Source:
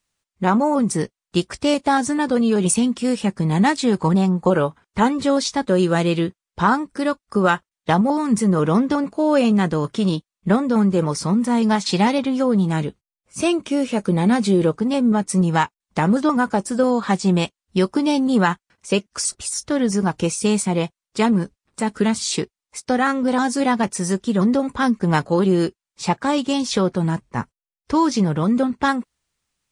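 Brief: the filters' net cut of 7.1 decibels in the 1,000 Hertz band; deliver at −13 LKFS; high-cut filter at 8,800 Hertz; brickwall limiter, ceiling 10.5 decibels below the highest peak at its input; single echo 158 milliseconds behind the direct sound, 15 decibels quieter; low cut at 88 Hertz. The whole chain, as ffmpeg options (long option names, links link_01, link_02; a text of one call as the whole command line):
ffmpeg -i in.wav -af "highpass=88,lowpass=8800,equalizer=frequency=1000:width_type=o:gain=-9,alimiter=limit=-17dB:level=0:latency=1,aecho=1:1:158:0.178,volume=12.5dB" out.wav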